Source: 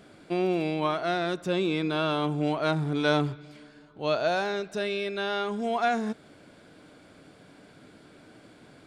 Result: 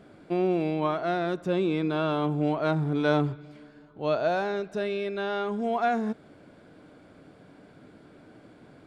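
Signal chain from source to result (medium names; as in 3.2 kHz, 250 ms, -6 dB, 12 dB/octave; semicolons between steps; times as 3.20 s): treble shelf 2.2 kHz -11 dB; trim +1.5 dB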